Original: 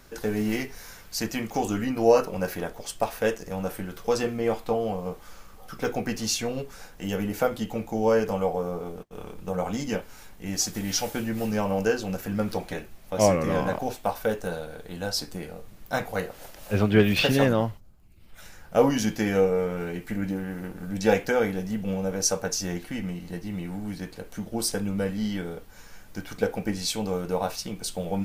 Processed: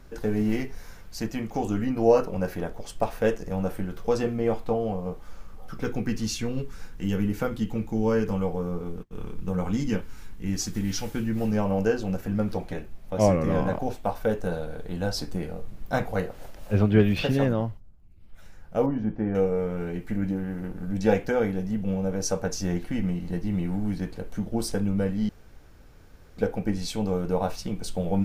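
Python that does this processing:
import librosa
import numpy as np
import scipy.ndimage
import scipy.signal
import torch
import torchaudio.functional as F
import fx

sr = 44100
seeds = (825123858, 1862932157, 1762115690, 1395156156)

y = fx.peak_eq(x, sr, hz=650.0, db=-11.5, octaves=0.77, at=(5.82, 11.36))
y = fx.lowpass(y, sr, hz=1200.0, slope=12, at=(18.86, 19.35))
y = fx.edit(y, sr, fx.room_tone_fill(start_s=25.29, length_s=1.08), tone=tone)
y = fx.tilt_eq(y, sr, slope=-2.0)
y = fx.rider(y, sr, range_db=4, speed_s=2.0)
y = F.gain(torch.from_numpy(y), -3.0).numpy()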